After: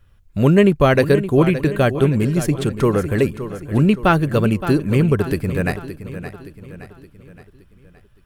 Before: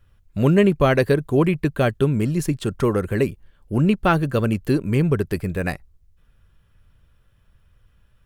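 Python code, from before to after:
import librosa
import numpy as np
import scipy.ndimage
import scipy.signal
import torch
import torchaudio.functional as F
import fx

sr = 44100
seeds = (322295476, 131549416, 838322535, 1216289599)

y = fx.echo_feedback(x, sr, ms=569, feedback_pct=48, wet_db=-12.0)
y = F.gain(torch.from_numpy(y), 3.0).numpy()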